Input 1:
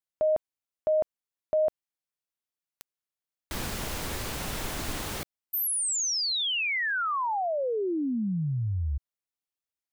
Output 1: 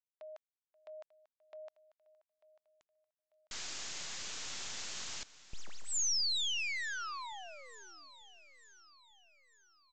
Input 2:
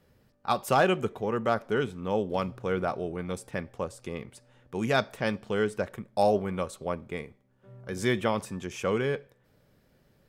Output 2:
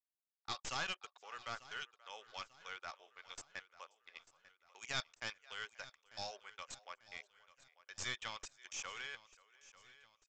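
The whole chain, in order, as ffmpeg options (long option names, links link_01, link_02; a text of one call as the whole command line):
ffmpeg -i in.wav -filter_complex "[0:a]highpass=910,acrossover=split=5600[link_01][link_02];[link_02]acompressor=threshold=-34dB:ratio=4:attack=1:release=60[link_03];[link_01][link_03]amix=inputs=2:normalize=0,anlmdn=0.0631,agate=range=-18dB:threshold=-53dB:ratio=16:release=46:detection=peak,aderivative,asplit=2[link_04][link_05];[link_05]adelay=530.6,volume=-21dB,highshelf=frequency=4000:gain=-11.9[link_06];[link_04][link_06]amix=inputs=2:normalize=0,aeval=exprs='clip(val(0),-1,0.00596)':channel_layout=same,asplit=2[link_07][link_08];[link_08]aecho=0:1:893|1786|2679|3572:0.126|0.0567|0.0255|0.0115[link_09];[link_07][link_09]amix=inputs=2:normalize=0,aresample=16000,aresample=44100,volume=3.5dB" out.wav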